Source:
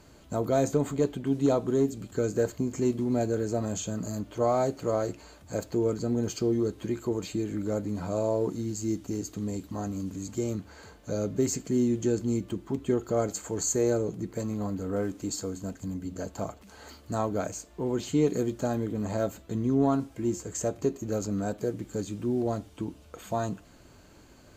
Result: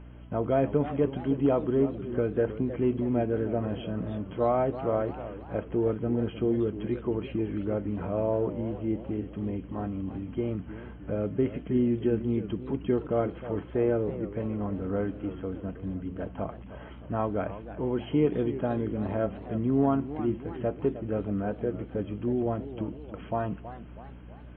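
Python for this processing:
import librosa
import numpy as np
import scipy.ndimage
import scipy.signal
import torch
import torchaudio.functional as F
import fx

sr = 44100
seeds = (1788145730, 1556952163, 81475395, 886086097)

y = fx.brickwall_lowpass(x, sr, high_hz=3300.0)
y = fx.add_hum(y, sr, base_hz=60, snr_db=17)
y = fx.echo_warbled(y, sr, ms=316, feedback_pct=51, rate_hz=2.8, cents=190, wet_db=-13)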